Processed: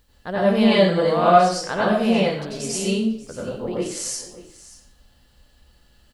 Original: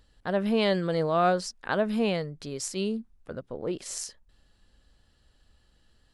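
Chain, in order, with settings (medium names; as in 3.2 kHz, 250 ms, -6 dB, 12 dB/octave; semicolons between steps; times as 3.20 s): plate-style reverb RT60 0.5 s, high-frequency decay 1×, pre-delay 80 ms, DRR -7.5 dB; word length cut 12-bit, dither triangular; on a send: delay 585 ms -17.5 dB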